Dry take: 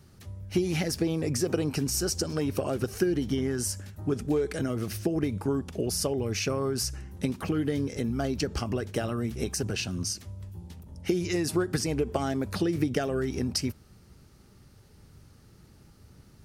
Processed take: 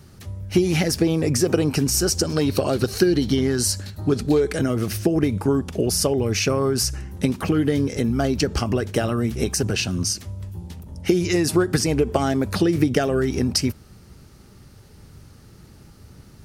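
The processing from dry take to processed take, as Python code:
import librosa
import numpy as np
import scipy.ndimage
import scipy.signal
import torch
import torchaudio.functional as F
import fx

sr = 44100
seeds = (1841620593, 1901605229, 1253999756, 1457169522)

y = fx.peak_eq(x, sr, hz=4200.0, db=14.0, octaves=0.33, at=(2.36, 4.4))
y = F.gain(torch.from_numpy(y), 8.0).numpy()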